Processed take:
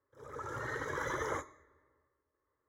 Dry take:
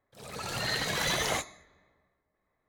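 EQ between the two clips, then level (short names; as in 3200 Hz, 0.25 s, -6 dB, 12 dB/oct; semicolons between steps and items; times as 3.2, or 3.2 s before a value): running mean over 10 samples; HPF 64 Hz; fixed phaser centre 710 Hz, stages 6; 0.0 dB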